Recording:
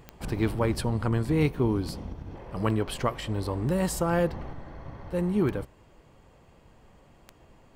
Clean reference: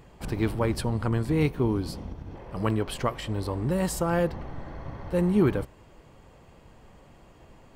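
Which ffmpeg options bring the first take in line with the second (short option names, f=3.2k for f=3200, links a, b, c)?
-af "adeclick=t=4,asetnsamples=n=441:p=0,asendcmd='4.53 volume volume 3.5dB',volume=0dB"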